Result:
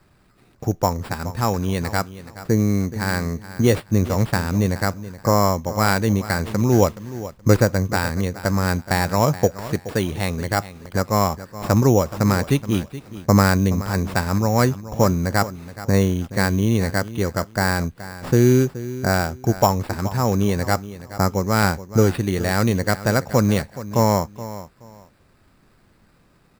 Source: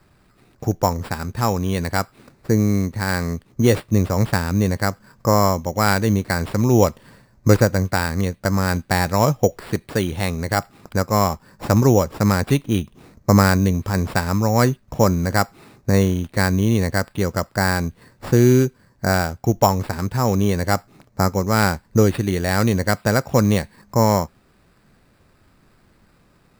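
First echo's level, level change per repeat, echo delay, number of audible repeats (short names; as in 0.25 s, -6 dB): -15.0 dB, -13.0 dB, 0.424 s, 2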